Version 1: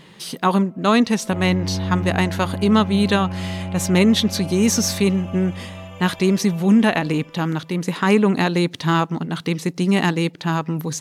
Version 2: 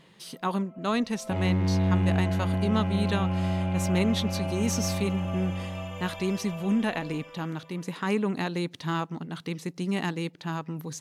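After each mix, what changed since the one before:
speech −11.0 dB
second sound: remove high-frequency loss of the air 280 metres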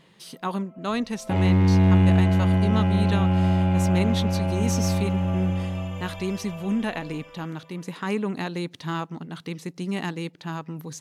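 second sound +7.0 dB

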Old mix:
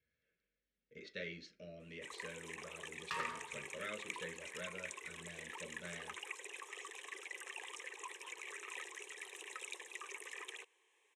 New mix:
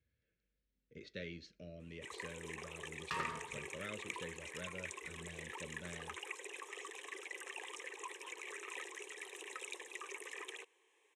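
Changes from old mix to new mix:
speech: send −11.5 dB
master: add low-shelf EQ 460 Hz +8.5 dB

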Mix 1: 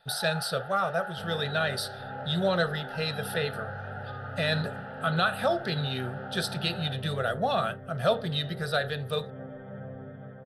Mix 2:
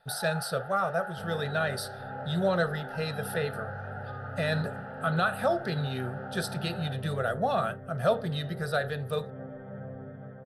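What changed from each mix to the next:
master: add parametric band 3,400 Hz −8 dB 1.1 octaves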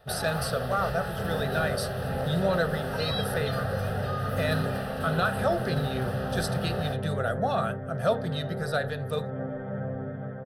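speech: add parametric band 6,300 Hz +4 dB 0.77 octaves
first sound: remove pair of resonant band-passes 1,100 Hz, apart 0.75 octaves
second sound +8.0 dB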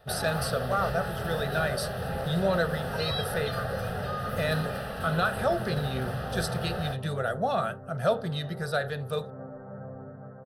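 second sound: add transistor ladder low-pass 1,400 Hz, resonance 45%

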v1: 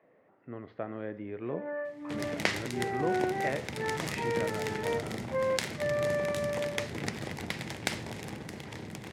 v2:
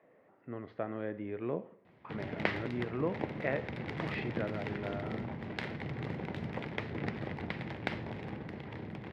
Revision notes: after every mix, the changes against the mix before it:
first sound: muted
second sound: add high-frequency loss of the air 380 metres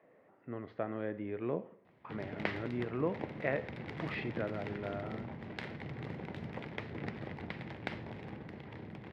background −4.0 dB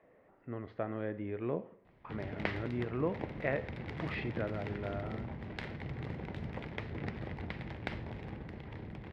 master: remove high-pass filter 120 Hz 12 dB per octave

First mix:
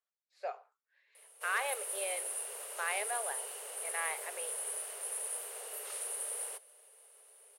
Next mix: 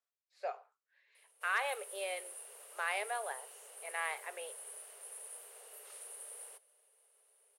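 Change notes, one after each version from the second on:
background −10.0 dB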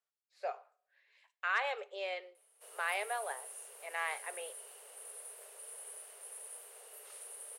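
background: entry +1.20 s
reverb: on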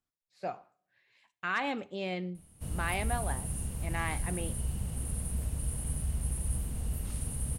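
background +3.5 dB
master: remove Chebyshev high-pass with heavy ripple 410 Hz, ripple 3 dB

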